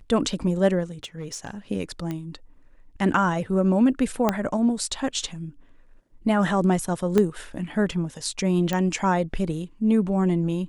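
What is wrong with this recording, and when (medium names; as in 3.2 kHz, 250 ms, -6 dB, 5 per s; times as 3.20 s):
1.03–1.51 s: clipped -27.5 dBFS
2.11 s: pop -18 dBFS
4.29 s: pop -7 dBFS
7.18 s: pop -9 dBFS
8.73 s: pop -12 dBFS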